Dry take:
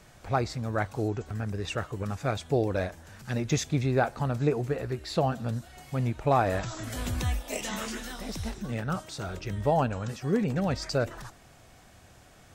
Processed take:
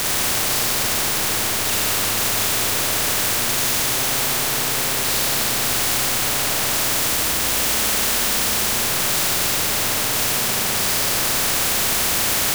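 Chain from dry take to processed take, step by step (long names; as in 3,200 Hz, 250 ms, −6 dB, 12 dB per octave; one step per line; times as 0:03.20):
sign of each sample alone
four-comb reverb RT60 2.9 s, combs from 30 ms, DRR −9 dB
every bin compressed towards the loudest bin 4 to 1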